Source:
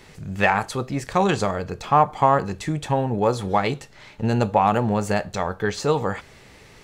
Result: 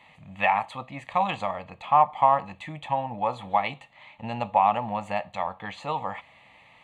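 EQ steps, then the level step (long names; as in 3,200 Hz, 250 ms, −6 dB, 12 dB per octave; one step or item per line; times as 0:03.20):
high-pass filter 950 Hz 6 dB per octave
head-to-tape spacing loss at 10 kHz 23 dB
phaser with its sweep stopped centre 1,500 Hz, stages 6
+5.0 dB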